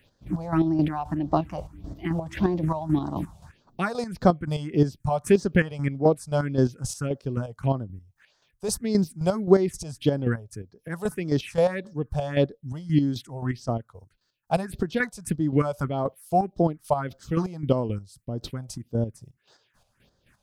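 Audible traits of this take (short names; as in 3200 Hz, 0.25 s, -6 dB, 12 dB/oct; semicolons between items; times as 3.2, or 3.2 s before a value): chopped level 3.8 Hz, depth 60%, duty 35%; phasing stages 4, 1.7 Hz, lowest notch 290–2500 Hz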